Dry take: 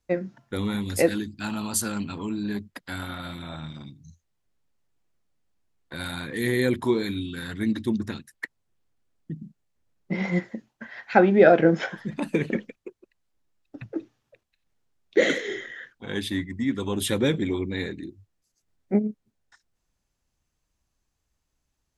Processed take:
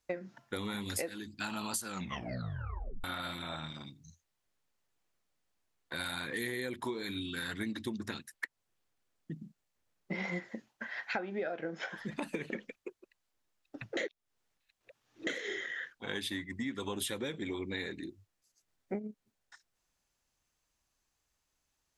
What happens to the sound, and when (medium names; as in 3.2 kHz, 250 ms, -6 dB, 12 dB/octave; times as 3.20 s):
1.88 s: tape stop 1.16 s
13.97–15.27 s: reverse
whole clip: bass shelf 360 Hz -11 dB; compression 20:1, threshold -34 dBFS; trim +1 dB